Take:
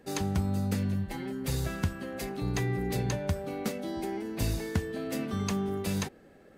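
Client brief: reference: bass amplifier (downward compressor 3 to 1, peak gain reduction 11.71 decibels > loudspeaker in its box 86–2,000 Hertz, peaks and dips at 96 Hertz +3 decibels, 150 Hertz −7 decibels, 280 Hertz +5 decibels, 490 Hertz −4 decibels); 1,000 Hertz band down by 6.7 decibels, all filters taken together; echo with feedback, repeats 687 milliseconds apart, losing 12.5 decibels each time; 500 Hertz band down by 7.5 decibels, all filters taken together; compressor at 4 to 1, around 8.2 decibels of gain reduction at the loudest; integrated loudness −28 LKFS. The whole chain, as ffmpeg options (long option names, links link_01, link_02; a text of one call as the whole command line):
ffmpeg -i in.wav -af "equalizer=frequency=500:width_type=o:gain=-8.5,equalizer=frequency=1000:width_type=o:gain=-5.5,acompressor=threshold=-34dB:ratio=4,aecho=1:1:687|1374|2061:0.237|0.0569|0.0137,acompressor=threshold=-46dB:ratio=3,highpass=frequency=86:width=0.5412,highpass=frequency=86:width=1.3066,equalizer=frequency=96:width_type=q:width=4:gain=3,equalizer=frequency=150:width_type=q:width=4:gain=-7,equalizer=frequency=280:width_type=q:width=4:gain=5,equalizer=frequency=490:width_type=q:width=4:gain=-4,lowpass=frequency=2000:width=0.5412,lowpass=frequency=2000:width=1.3066,volume=19.5dB" out.wav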